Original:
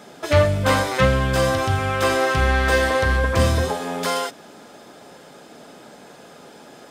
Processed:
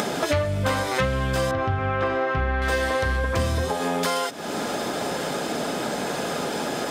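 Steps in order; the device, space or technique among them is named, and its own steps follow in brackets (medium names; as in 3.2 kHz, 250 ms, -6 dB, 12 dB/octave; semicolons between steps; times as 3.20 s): upward and downward compression (upward compressor, threshold -22 dBFS; compression 5:1, threshold -28 dBFS, peak gain reduction 15.5 dB); 1.51–2.62 s: low-pass 2.1 kHz 12 dB/octave; trim +6.5 dB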